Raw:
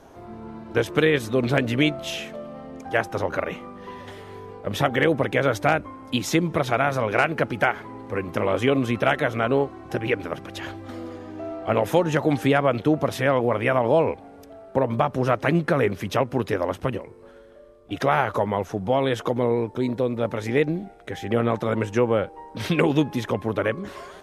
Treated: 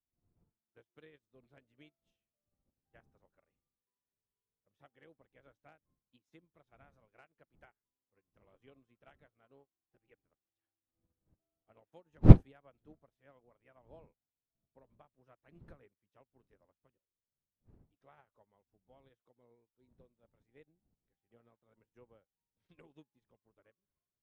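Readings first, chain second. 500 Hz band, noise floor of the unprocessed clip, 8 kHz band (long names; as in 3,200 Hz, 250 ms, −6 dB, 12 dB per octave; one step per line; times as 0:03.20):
−26.5 dB, −46 dBFS, below −35 dB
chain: wind on the microphone 170 Hz −23 dBFS
expander for the loud parts 2.5 to 1, over −33 dBFS
level −10 dB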